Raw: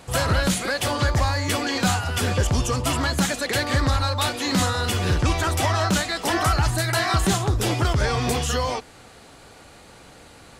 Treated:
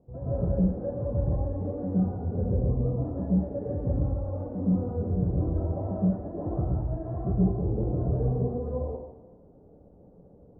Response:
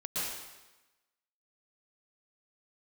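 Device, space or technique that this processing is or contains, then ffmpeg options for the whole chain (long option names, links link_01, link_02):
next room: -filter_complex "[0:a]lowpass=frequency=550:width=0.5412,lowpass=frequency=550:width=1.3066[link_01];[1:a]atrim=start_sample=2205[link_02];[link_01][link_02]afir=irnorm=-1:irlink=0,volume=-8dB"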